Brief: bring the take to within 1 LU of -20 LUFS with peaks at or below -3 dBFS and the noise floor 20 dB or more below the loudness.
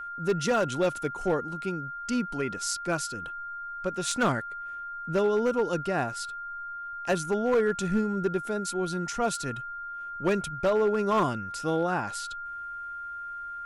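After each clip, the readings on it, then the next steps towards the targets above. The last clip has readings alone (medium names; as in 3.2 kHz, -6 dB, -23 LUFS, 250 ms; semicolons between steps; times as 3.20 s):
clipped samples 0.7%; clipping level -18.5 dBFS; steady tone 1.4 kHz; tone level -35 dBFS; loudness -29.5 LUFS; peak level -18.5 dBFS; loudness target -20.0 LUFS
-> clip repair -18.5 dBFS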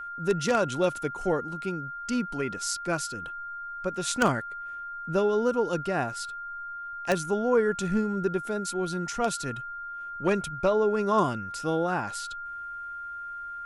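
clipped samples 0.0%; steady tone 1.4 kHz; tone level -35 dBFS
-> band-stop 1.4 kHz, Q 30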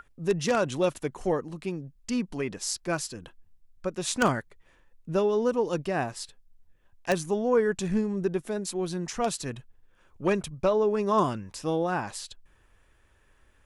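steady tone not found; loudness -28.5 LUFS; peak level -10.0 dBFS; loudness target -20.0 LUFS
-> trim +8.5 dB; peak limiter -3 dBFS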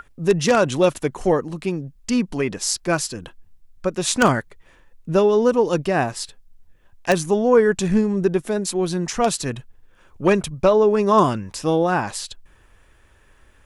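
loudness -20.0 LUFS; peak level -3.0 dBFS; noise floor -55 dBFS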